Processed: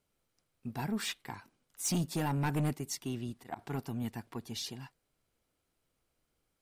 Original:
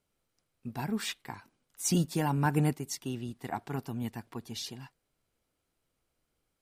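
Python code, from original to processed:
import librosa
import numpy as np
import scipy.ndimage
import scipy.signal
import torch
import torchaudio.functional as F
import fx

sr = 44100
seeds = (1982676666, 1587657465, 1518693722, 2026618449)

y = fx.auto_swell(x, sr, attack_ms=118.0, at=(3.09, 3.59))
y = 10.0 ** (-26.5 / 20.0) * np.tanh(y / 10.0 ** (-26.5 / 20.0))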